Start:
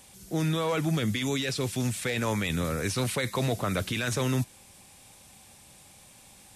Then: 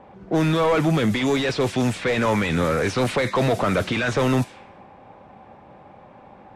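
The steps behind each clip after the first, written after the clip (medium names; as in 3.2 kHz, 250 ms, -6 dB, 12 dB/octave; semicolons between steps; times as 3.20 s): overdrive pedal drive 21 dB, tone 1 kHz, clips at -16 dBFS; level-controlled noise filter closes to 870 Hz, open at -22.5 dBFS; trim +6 dB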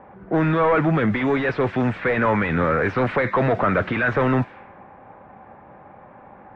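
resonant low-pass 1.7 kHz, resonance Q 1.7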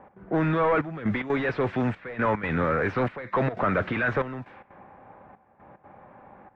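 trance gate "x.xxxxxxxx...x" 185 bpm -12 dB; trim -4.5 dB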